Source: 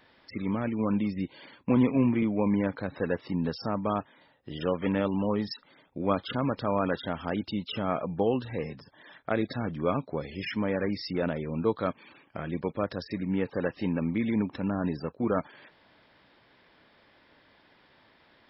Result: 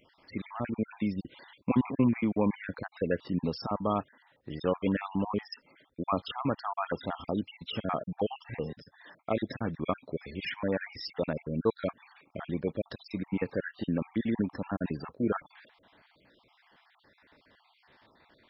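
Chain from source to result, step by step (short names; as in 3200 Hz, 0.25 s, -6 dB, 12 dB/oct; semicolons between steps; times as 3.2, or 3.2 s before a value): random spectral dropouts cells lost 45%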